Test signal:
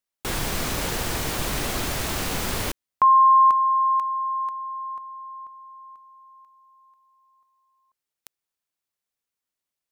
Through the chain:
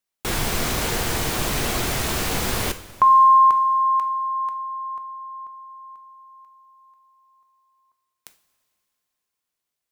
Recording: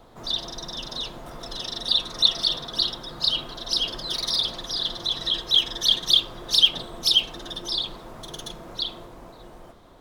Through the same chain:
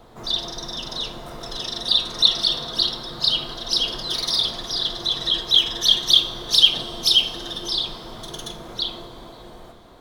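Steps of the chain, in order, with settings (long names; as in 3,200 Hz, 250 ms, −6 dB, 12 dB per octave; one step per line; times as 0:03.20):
coupled-rooms reverb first 0.4 s, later 3.2 s, from −16 dB, DRR 7.5 dB
level +2.5 dB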